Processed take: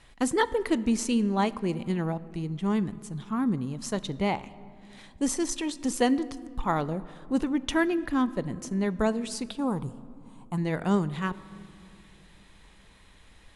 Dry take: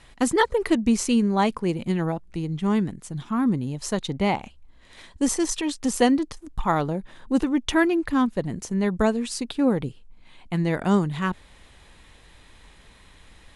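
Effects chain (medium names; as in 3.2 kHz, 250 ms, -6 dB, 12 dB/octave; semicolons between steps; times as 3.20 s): 9.58–10.58 s: graphic EQ 125/250/500/1000/2000/4000/8000 Hz +3/-3/-7/+11/-12/-9/+9 dB; on a send: reverberation RT60 2.5 s, pre-delay 5 ms, DRR 16 dB; on the sum: trim -4.5 dB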